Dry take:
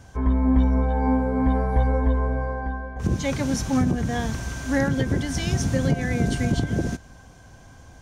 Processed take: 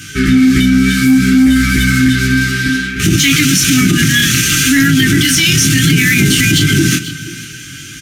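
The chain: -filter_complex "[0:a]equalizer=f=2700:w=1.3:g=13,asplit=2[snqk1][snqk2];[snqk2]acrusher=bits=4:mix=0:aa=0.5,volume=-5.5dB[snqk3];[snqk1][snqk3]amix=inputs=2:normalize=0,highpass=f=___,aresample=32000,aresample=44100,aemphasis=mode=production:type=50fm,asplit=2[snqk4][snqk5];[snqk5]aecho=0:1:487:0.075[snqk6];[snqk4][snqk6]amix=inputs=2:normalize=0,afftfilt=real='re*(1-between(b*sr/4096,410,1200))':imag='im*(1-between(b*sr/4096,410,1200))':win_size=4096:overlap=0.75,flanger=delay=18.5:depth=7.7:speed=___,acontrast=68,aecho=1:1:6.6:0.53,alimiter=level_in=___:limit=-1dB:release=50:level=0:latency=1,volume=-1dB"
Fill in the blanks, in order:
110, 0.61, 14dB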